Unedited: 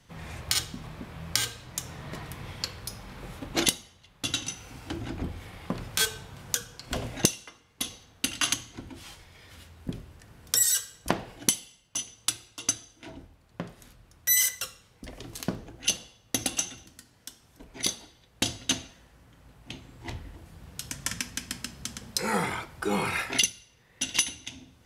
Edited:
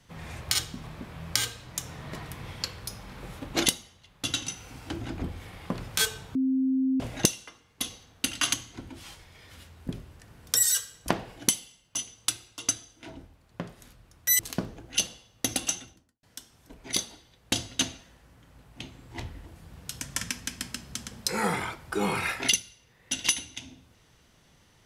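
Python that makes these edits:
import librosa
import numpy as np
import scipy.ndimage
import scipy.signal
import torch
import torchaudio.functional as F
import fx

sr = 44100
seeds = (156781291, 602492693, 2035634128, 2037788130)

y = fx.studio_fade_out(x, sr, start_s=16.62, length_s=0.51)
y = fx.edit(y, sr, fx.bleep(start_s=6.35, length_s=0.65, hz=263.0, db=-22.0),
    fx.cut(start_s=14.39, length_s=0.9), tone=tone)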